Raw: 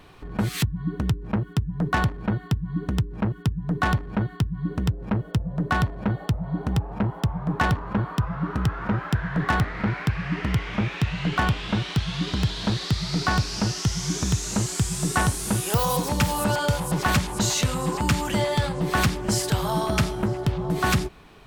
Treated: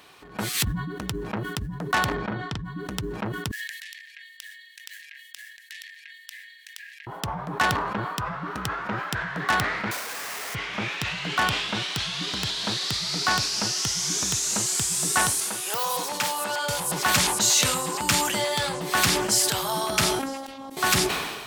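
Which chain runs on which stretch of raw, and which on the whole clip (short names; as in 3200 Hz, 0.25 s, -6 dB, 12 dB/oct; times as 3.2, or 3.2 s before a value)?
2.14–2.65 air absorption 120 m + notch 2700 Hz + doubler 42 ms -8.5 dB
3.51–7.07 brick-wall FIR high-pass 1600 Hz + compressor 12:1, threshold -41 dBFS
9.91–10.55 CVSD 16 kbps + brick-wall FIR high-pass 410 Hz + Schmitt trigger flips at -40 dBFS
15.4–16.69 HPF 540 Hz 6 dB/oct + high shelf 4500 Hz -9 dB + overloaded stage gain 21 dB
20.19–20.77 auto swell 0.143 s + robotiser 270 Hz
whole clip: HPF 550 Hz 6 dB/oct; high shelf 3400 Hz +8 dB; sustainer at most 39 dB/s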